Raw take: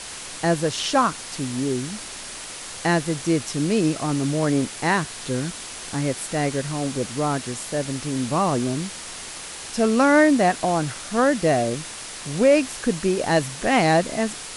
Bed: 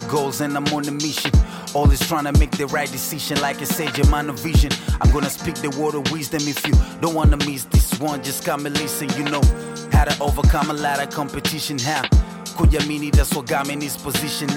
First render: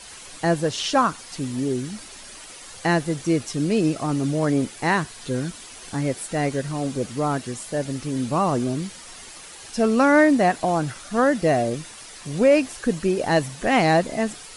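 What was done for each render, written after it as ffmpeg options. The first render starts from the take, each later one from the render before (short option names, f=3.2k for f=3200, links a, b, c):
-af "afftdn=nr=9:nf=-36"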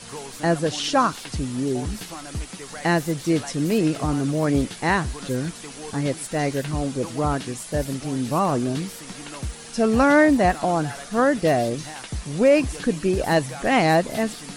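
-filter_complex "[1:a]volume=-16.5dB[a];[0:a][a]amix=inputs=2:normalize=0"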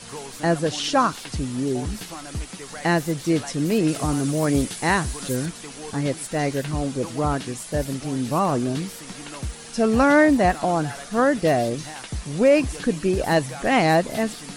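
-filter_complex "[0:a]asettb=1/sr,asplit=3[a][b][c];[a]atrim=end=3.884[d];[b]atrim=start=3.88:end=5.46,asetpts=PTS-STARTPTS,afade=t=in:d=0.004:c=qsin,afade=t=out:st=1.576:d=0.004:c=qsin,highshelf=f=7.1k:g=11.5[e];[c]atrim=start=5.456[f];[d][e]acrossfade=d=0.004:c1=hsin:c2=qsin[g];[g][f]acrossfade=d=0.004:c1=qsin:c2=hsin"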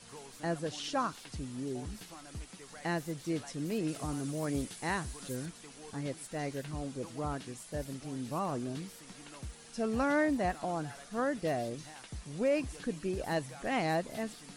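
-af "volume=-13.5dB"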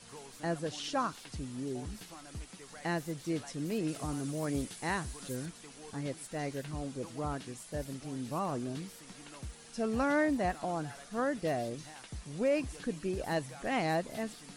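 -af anull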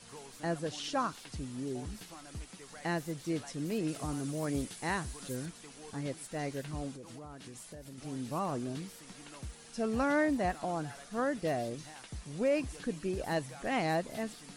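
-filter_complex "[0:a]asettb=1/sr,asplit=3[a][b][c];[a]atrim=end=6.914[d];[b]atrim=start=6.91:end=7.98,asetpts=PTS-STARTPTS,afade=t=in:d=0.004:c=qsin,afade=t=out:st=1.066:d=0.004:c=qsin,acompressor=threshold=-43dB:ratio=12:attack=3.2:release=140:knee=1:detection=peak[e];[c]atrim=start=7.976[f];[d][e]acrossfade=d=0.004:c1=hsin:c2=qsin[g];[g][f]acrossfade=d=0.004:c1=qsin:c2=hsin"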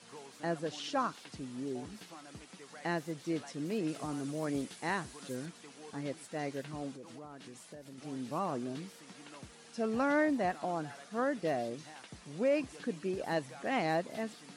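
-af "highpass=170,highshelf=f=8.3k:g=-10.5"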